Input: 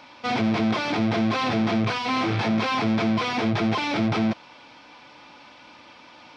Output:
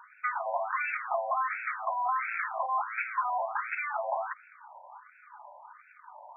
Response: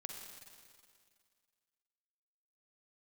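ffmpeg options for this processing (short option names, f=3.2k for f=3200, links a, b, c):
-filter_complex "[0:a]adynamicsmooth=sensitivity=8:basefreq=660,highpass=f=500:w=0.5412,highpass=f=500:w=1.3066,asplit=2[a][b];[1:a]atrim=start_sample=2205,asetrate=52920,aresample=44100[c];[b][c]afir=irnorm=-1:irlink=0,volume=-17dB[d];[a][d]amix=inputs=2:normalize=0,acompressor=threshold=-30dB:ratio=4,afftfilt=real='re*between(b*sr/1024,730*pow(1900/730,0.5+0.5*sin(2*PI*1.4*pts/sr))/1.41,730*pow(1900/730,0.5+0.5*sin(2*PI*1.4*pts/sr))*1.41)':imag='im*between(b*sr/1024,730*pow(1900/730,0.5+0.5*sin(2*PI*1.4*pts/sr))/1.41,730*pow(1900/730,0.5+0.5*sin(2*PI*1.4*pts/sr))*1.41)':win_size=1024:overlap=0.75,volume=5.5dB"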